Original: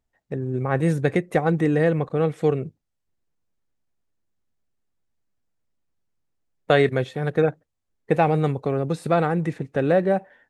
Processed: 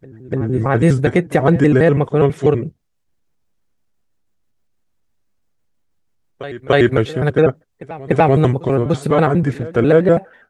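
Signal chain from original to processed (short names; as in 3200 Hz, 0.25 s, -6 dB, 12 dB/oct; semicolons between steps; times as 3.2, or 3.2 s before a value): trilling pitch shifter -2.5 st, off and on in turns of 82 ms; pre-echo 0.293 s -20 dB; maximiser +9.5 dB; gain -1 dB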